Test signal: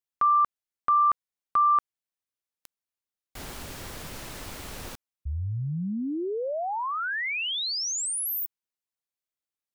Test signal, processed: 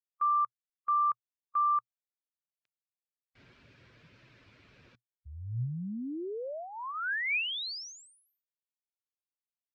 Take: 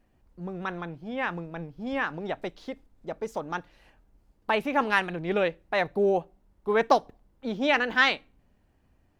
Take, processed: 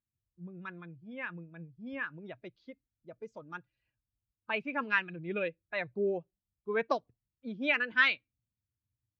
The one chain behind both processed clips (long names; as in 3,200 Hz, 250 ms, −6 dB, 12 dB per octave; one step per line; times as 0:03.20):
spectral dynamics exaggerated over time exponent 1.5
loudspeaker in its box 120–4,700 Hz, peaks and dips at 120 Hz +9 dB, 800 Hz −9 dB, 1,600 Hz +5 dB, 2,400 Hz +8 dB
level −6 dB